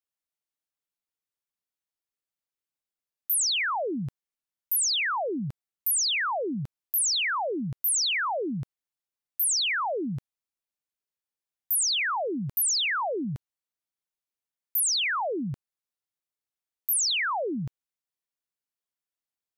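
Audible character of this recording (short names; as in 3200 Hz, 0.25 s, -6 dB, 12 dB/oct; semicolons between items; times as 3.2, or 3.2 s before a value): noise floor -93 dBFS; spectral tilt -2.0 dB/oct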